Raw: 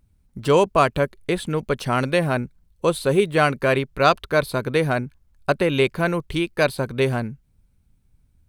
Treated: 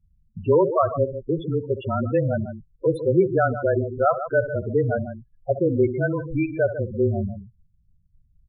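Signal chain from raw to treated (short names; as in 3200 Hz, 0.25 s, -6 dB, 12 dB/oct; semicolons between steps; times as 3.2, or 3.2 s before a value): loudspeakers at several distances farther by 23 m -12 dB, 51 m -11 dB; frequency shift -23 Hz; loudest bins only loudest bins 8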